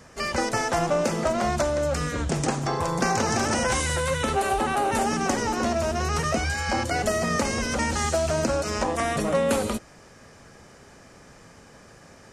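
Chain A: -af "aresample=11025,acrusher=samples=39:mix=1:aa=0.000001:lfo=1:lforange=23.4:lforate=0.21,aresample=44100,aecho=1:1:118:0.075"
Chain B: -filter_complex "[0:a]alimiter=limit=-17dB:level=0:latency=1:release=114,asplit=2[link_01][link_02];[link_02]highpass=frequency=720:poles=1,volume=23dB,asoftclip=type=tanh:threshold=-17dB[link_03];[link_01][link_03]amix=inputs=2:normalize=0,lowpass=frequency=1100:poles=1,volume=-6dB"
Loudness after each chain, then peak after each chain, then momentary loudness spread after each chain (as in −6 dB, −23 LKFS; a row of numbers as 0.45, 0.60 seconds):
−28.0, −25.5 LKFS; −10.5, −17.5 dBFS; 5, 15 LU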